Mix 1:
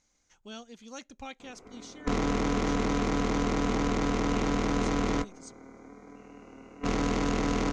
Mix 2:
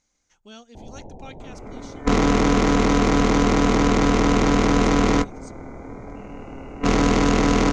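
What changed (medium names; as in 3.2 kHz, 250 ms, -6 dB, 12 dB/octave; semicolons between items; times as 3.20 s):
first sound: unmuted; second sound +10.0 dB; reverb: on, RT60 0.65 s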